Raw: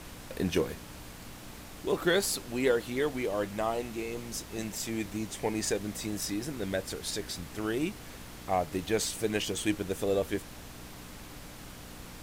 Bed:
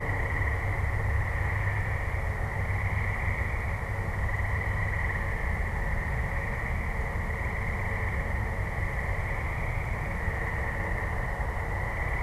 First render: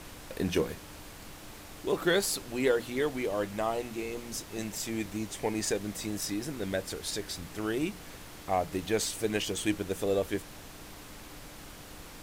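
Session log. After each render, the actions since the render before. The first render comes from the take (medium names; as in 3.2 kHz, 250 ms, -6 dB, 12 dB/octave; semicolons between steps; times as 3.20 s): de-hum 60 Hz, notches 4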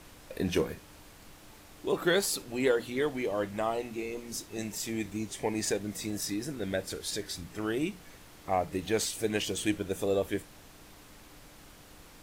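noise print and reduce 6 dB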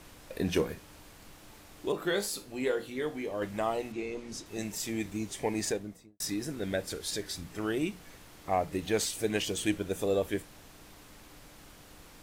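1.92–3.42 s: feedback comb 51 Hz, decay 0.28 s, mix 70%; 3.92–4.46 s: distance through air 62 m; 5.58–6.20 s: studio fade out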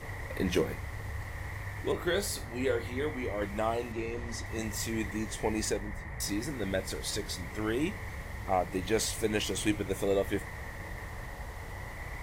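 add bed -11 dB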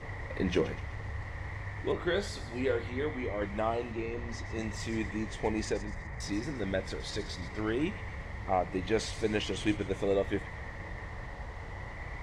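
distance through air 110 m; feedback echo behind a high-pass 125 ms, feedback 48%, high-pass 2 kHz, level -12 dB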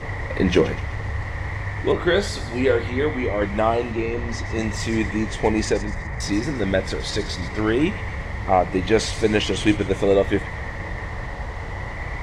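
trim +11.5 dB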